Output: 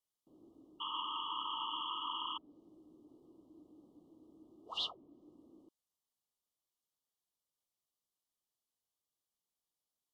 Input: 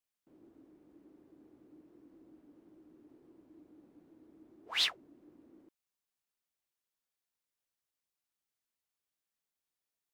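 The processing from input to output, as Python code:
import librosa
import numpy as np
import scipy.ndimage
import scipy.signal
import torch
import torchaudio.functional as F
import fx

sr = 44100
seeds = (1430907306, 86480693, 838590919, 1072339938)

y = fx.spec_paint(x, sr, seeds[0], shape='noise', start_s=0.8, length_s=1.58, low_hz=880.0, high_hz=3400.0, level_db=-33.0)
y = fx.brickwall_bandstop(y, sr, low_hz=1300.0, high_hz=2800.0)
y = fx.env_lowpass_down(y, sr, base_hz=2700.0, full_db=-37.5)
y = F.gain(torch.from_numpy(y), -1.0).numpy()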